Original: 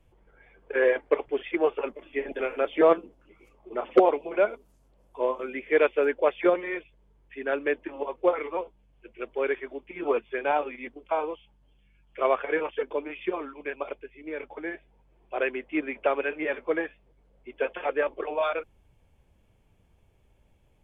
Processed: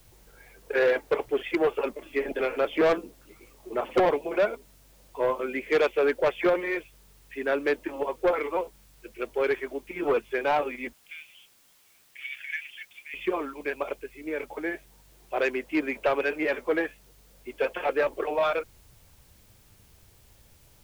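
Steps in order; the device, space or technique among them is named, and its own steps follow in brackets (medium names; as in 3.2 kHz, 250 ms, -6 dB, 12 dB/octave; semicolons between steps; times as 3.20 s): 10.93–13.14 s: steep high-pass 1.8 kHz 72 dB/octave; open-reel tape (saturation -20.5 dBFS, distortion -9 dB; peaking EQ 110 Hz +4 dB 0.77 oct; white noise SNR 32 dB); trim +3.5 dB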